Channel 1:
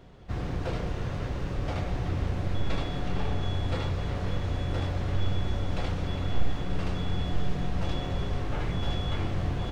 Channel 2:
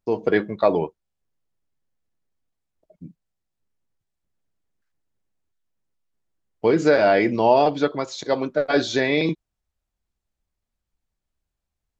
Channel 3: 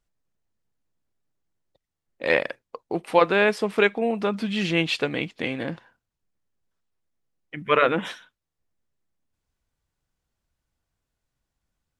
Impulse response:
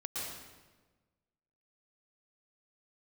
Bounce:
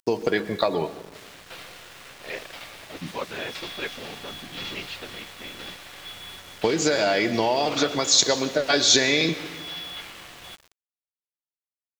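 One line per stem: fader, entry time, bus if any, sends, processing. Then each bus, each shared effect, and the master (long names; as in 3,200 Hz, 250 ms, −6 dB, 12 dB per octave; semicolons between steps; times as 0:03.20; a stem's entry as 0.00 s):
−2.5 dB, 0.85 s, send −3.5 dB, resonant band-pass 3,600 Hz, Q 0.63
+3.0 dB, 0.00 s, send −13 dB, downward compressor 10 to 1, threshold −24 dBFS, peak gain reduction 13.5 dB; high-shelf EQ 4,300 Hz +10.5 dB; upward compression, threshold −47 dBFS
−16.0 dB, 0.00 s, no send, random phases in short frames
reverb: on, RT60 1.3 s, pre-delay 107 ms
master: low-pass that shuts in the quiet parts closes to 2,400 Hz, open at −28 dBFS; high-shelf EQ 3,000 Hz +11.5 dB; centre clipping without the shift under −42 dBFS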